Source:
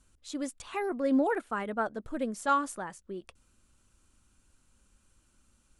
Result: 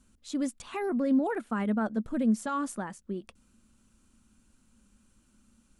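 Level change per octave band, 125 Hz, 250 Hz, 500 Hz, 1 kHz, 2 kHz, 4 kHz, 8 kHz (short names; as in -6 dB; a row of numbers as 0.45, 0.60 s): +10.0 dB, +4.5 dB, -1.5 dB, -4.0 dB, -2.5 dB, n/a, 0.0 dB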